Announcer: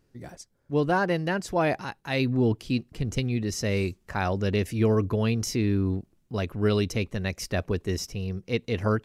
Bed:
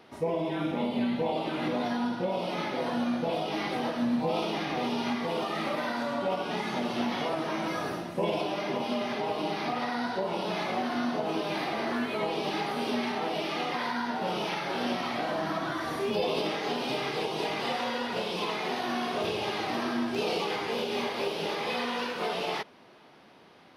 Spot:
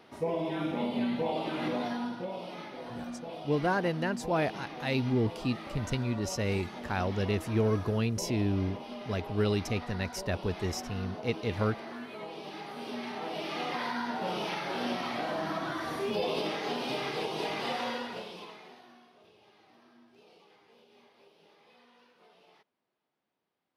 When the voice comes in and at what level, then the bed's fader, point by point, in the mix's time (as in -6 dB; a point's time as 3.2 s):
2.75 s, -4.5 dB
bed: 1.73 s -2 dB
2.71 s -11.5 dB
12.56 s -11.5 dB
13.69 s -2.5 dB
17.91 s -2.5 dB
19.14 s -30 dB